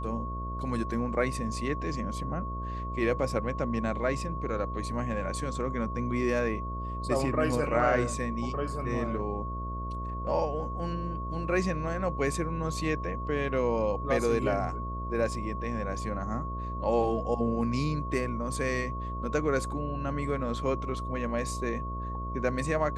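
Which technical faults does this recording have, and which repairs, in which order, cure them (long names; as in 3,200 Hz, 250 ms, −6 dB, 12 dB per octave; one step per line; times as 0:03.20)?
mains buzz 60 Hz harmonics 11 −36 dBFS
whistle 1,100 Hz −37 dBFS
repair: notch filter 1,100 Hz, Q 30
hum removal 60 Hz, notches 11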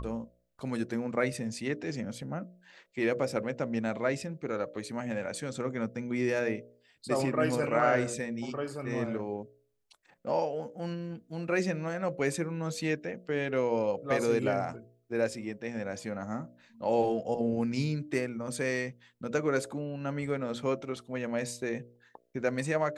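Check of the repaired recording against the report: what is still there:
none of them is left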